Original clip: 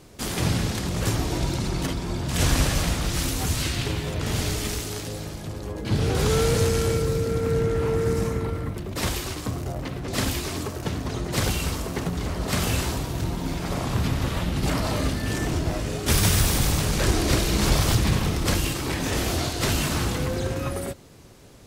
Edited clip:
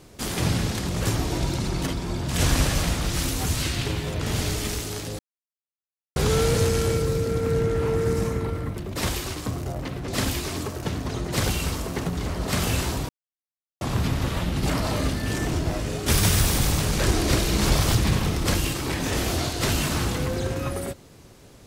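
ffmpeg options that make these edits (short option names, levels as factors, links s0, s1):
-filter_complex "[0:a]asplit=5[s0][s1][s2][s3][s4];[s0]atrim=end=5.19,asetpts=PTS-STARTPTS,afade=t=out:st=5.186:d=0.004:c=hsin[s5];[s1]atrim=start=5.19:end=6.16,asetpts=PTS-STARTPTS,volume=0[s6];[s2]atrim=start=6.16:end=13.09,asetpts=PTS-STARTPTS,afade=t=in:d=0.004:c=hsin,afade=t=out:st=6.926:d=0.004:c=hsin[s7];[s3]atrim=start=13.09:end=13.81,asetpts=PTS-STARTPTS,volume=0[s8];[s4]atrim=start=13.81,asetpts=PTS-STARTPTS,afade=t=in:d=0.004:c=hsin[s9];[s5][s6][s7][s8][s9]concat=n=5:v=0:a=1"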